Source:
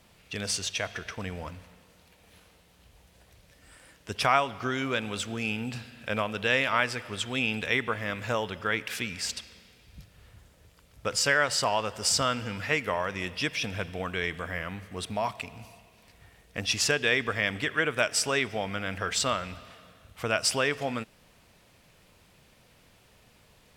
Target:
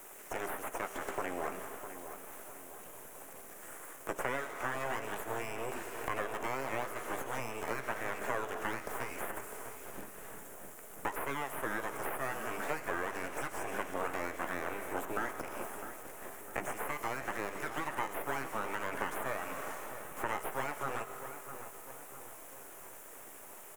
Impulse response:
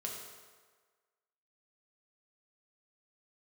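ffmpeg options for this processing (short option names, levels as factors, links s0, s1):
-filter_complex "[0:a]aeval=exprs='abs(val(0))':c=same,asplit=2[s0][s1];[1:a]atrim=start_sample=2205[s2];[s1][s2]afir=irnorm=-1:irlink=0,volume=0.316[s3];[s0][s3]amix=inputs=2:normalize=0,acompressor=threshold=0.0126:ratio=6,aexciter=amount=9.4:drive=6.6:freq=6500,acrossover=split=2500[s4][s5];[s5]acompressor=threshold=0.00708:ratio=4:attack=1:release=60[s6];[s4][s6]amix=inputs=2:normalize=0,acrossover=split=310 2100:gain=0.141 1 0.158[s7][s8][s9];[s7][s8][s9]amix=inputs=3:normalize=0,asplit=2[s10][s11];[s11]adelay=15,volume=0.251[s12];[s10][s12]amix=inputs=2:normalize=0,asplit=2[s13][s14];[s14]adelay=655,lowpass=f=2000:p=1,volume=0.316,asplit=2[s15][s16];[s16]adelay=655,lowpass=f=2000:p=1,volume=0.53,asplit=2[s17][s18];[s18]adelay=655,lowpass=f=2000:p=1,volume=0.53,asplit=2[s19][s20];[s20]adelay=655,lowpass=f=2000:p=1,volume=0.53,asplit=2[s21][s22];[s22]adelay=655,lowpass=f=2000:p=1,volume=0.53,asplit=2[s23][s24];[s24]adelay=655,lowpass=f=2000:p=1,volume=0.53[s25];[s13][s15][s17][s19][s21][s23][s25]amix=inputs=7:normalize=0,volume=3.76"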